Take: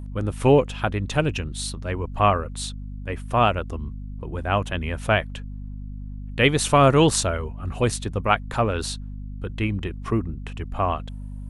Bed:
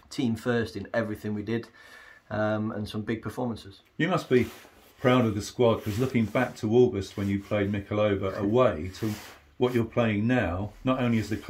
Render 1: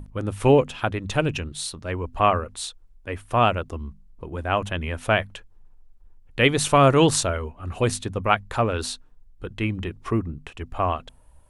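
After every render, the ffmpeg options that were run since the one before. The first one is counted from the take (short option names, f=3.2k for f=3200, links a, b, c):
-af "bandreject=f=50:t=h:w=6,bandreject=f=100:t=h:w=6,bandreject=f=150:t=h:w=6,bandreject=f=200:t=h:w=6,bandreject=f=250:t=h:w=6"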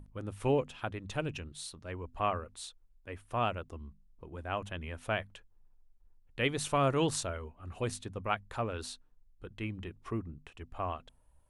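-af "volume=-12.5dB"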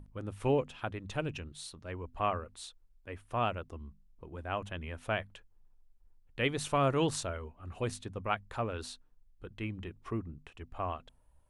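-af "highshelf=f=6.1k:g=-4"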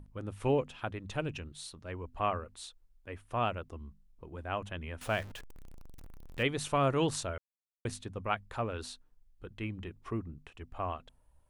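-filter_complex "[0:a]asettb=1/sr,asplit=3[a][b][c];[a]atrim=end=5.014[d];[b]atrim=start=5.01:end=6.43,asetpts=PTS-STARTPTS,afade=t=in:d=0.004:c=qsin,afade=t=out:st=1.416:d=0.004:c=qsin,aeval=exprs='val(0)+0.5*0.0075*sgn(val(0))':c=same[e];[c]atrim=start=6.426[f];[d][e]acrossfade=d=0.004:c1=hsin:c2=qsin[g];[g][f]acrossfade=d=0.004:c1=qsin:c2=hsin,asplit=3[h][i][j];[h]atrim=end=7.38,asetpts=PTS-STARTPTS,afade=t=out:st=7.376:d=0.004:c=hsin[k];[i]atrim=start=7.38:end=7.85,asetpts=PTS-STARTPTS,volume=0[l];[j]atrim=start=7.85,asetpts=PTS-STARTPTS,afade=t=in:d=0.004:c=hsin[m];[k][l][m]concat=n=3:v=0:a=1"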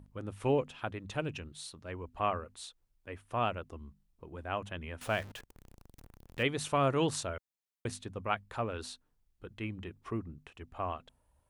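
-af "highpass=f=70:p=1"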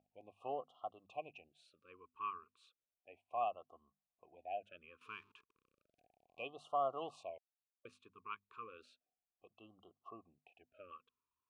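-filter_complex "[0:a]asplit=3[a][b][c];[a]bandpass=f=730:t=q:w=8,volume=0dB[d];[b]bandpass=f=1.09k:t=q:w=8,volume=-6dB[e];[c]bandpass=f=2.44k:t=q:w=8,volume=-9dB[f];[d][e][f]amix=inputs=3:normalize=0,afftfilt=real='re*(1-between(b*sr/1024,630*pow(2000/630,0.5+0.5*sin(2*PI*0.33*pts/sr))/1.41,630*pow(2000/630,0.5+0.5*sin(2*PI*0.33*pts/sr))*1.41))':imag='im*(1-between(b*sr/1024,630*pow(2000/630,0.5+0.5*sin(2*PI*0.33*pts/sr))/1.41,630*pow(2000/630,0.5+0.5*sin(2*PI*0.33*pts/sr))*1.41))':win_size=1024:overlap=0.75"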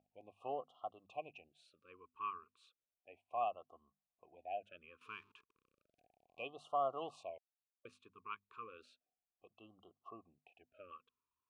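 -af anull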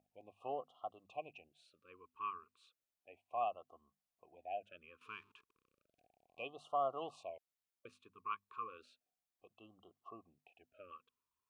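-filter_complex "[0:a]asettb=1/sr,asplit=3[a][b][c];[a]atrim=end=8.234[d];[b]atrim=start=8.23:end=8.78,asetpts=PTS-STARTPTS,afade=t=in:d=0.004:c=qsin,afade=t=out:st=0.546:d=0.004:c=qsin,equalizer=f=1.1k:w=6.4:g=9.5[e];[c]atrim=start=8.776[f];[d][e]acrossfade=d=0.004:c1=hsin:c2=qsin[g];[g][f]acrossfade=d=0.004:c1=qsin:c2=hsin"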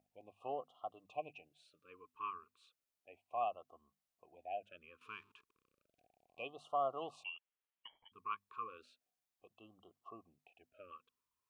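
-filter_complex "[0:a]asettb=1/sr,asplit=3[a][b][c];[a]atrim=end=0.904[d];[b]atrim=start=0.9:end=2.29,asetpts=PTS-STARTPTS,afade=t=in:d=0.004:c=qsin,afade=t=out:st=1.386:d=0.004:c=qsin,aecho=1:1:6.7:0.39,atrim=end_sample=61299[e];[c]atrim=start=2.286[f];[d][e]acrossfade=d=0.004:c1=hsin:c2=qsin[g];[g][f]acrossfade=d=0.004:c1=qsin:c2=hsin,asettb=1/sr,asplit=3[h][i][j];[h]atrim=end=7.244[k];[i]atrim=start=7.24:end=8.12,asetpts=PTS-STARTPTS,afade=t=in:d=0.004:c=qsin,afade=t=out:st=0.876:d=0.004:c=qsin,lowpass=f=2.9k:t=q:w=0.5098,lowpass=f=2.9k:t=q:w=0.6013,lowpass=f=2.9k:t=q:w=0.9,lowpass=f=2.9k:t=q:w=2.563,afreqshift=-3400[l];[j]atrim=start=8.116[m];[k][l]acrossfade=d=0.004:c1=hsin:c2=qsin[n];[n][m]acrossfade=d=0.004:c1=qsin:c2=hsin"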